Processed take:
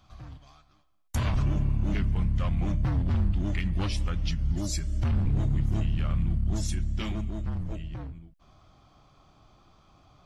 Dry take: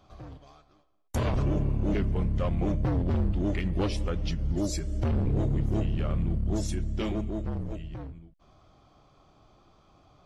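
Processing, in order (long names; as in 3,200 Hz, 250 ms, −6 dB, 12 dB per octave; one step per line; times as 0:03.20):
parametric band 450 Hz −14 dB 1.4 octaves, from 0:07.69 −6 dB
level +2.5 dB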